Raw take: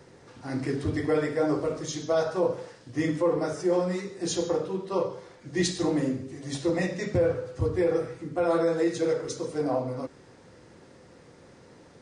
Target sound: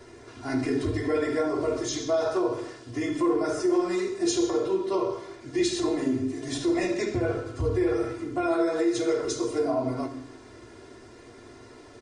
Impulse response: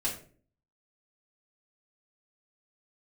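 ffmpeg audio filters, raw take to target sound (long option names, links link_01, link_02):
-filter_complex "[0:a]aecho=1:1:2.9:0.92,alimiter=limit=-20.5dB:level=0:latency=1:release=88,asplit=2[link_01][link_02];[1:a]atrim=start_sample=2205,asetrate=22491,aresample=44100[link_03];[link_02][link_03]afir=irnorm=-1:irlink=0,volume=-13.5dB[link_04];[link_01][link_04]amix=inputs=2:normalize=0"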